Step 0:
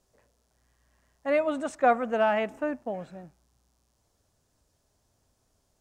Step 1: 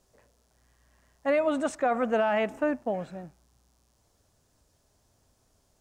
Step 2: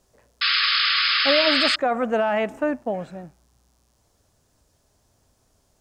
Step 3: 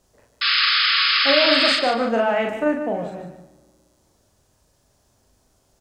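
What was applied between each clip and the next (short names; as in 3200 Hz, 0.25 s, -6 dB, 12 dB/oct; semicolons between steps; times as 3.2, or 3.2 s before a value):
limiter -21 dBFS, peak gain reduction 10.5 dB; gain +3.5 dB
painted sound noise, 0.41–1.76, 1100–5200 Hz -24 dBFS; gain +3.5 dB
doubler 40 ms -3 dB; feedback echo 0.148 s, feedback 25%, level -9.5 dB; on a send at -20 dB: reverb RT60 2.0 s, pre-delay 3 ms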